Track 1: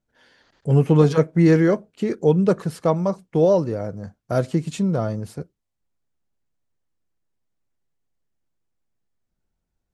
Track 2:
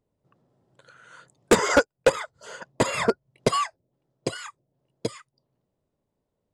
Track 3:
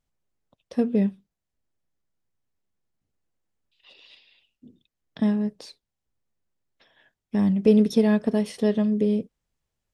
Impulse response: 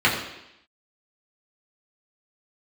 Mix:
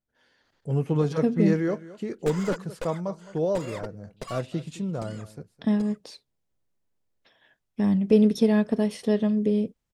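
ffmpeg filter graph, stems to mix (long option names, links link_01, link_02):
-filter_complex "[0:a]volume=-9dB,asplit=2[link_01][link_02];[link_02]volume=-17.5dB[link_03];[1:a]aeval=exprs='clip(val(0),-1,0.0447)':channel_layout=same,adelay=750,volume=-13.5dB[link_04];[2:a]adelay=450,volume=-1dB[link_05];[link_03]aecho=0:1:214:1[link_06];[link_01][link_04][link_05][link_06]amix=inputs=4:normalize=0"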